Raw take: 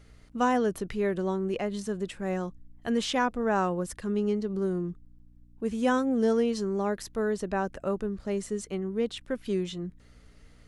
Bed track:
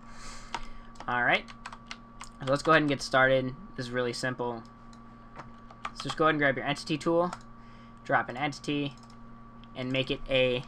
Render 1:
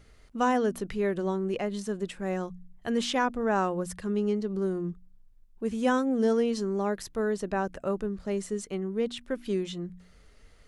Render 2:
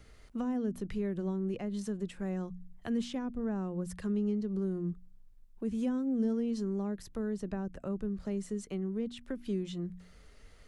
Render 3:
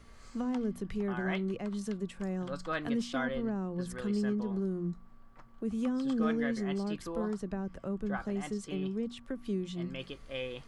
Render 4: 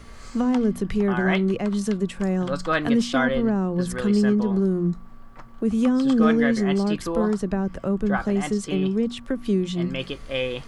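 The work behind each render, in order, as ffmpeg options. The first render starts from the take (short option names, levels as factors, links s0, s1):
-af "bandreject=f=60:t=h:w=4,bandreject=f=120:t=h:w=4,bandreject=f=180:t=h:w=4,bandreject=f=240:t=h:w=4,bandreject=f=300:t=h:w=4"
-filter_complex "[0:a]acrossover=split=570[s0][s1];[s1]alimiter=limit=0.0631:level=0:latency=1:release=388[s2];[s0][s2]amix=inputs=2:normalize=0,acrossover=split=270[s3][s4];[s4]acompressor=threshold=0.00794:ratio=6[s5];[s3][s5]amix=inputs=2:normalize=0"
-filter_complex "[1:a]volume=0.224[s0];[0:a][s0]amix=inputs=2:normalize=0"
-af "volume=3.98"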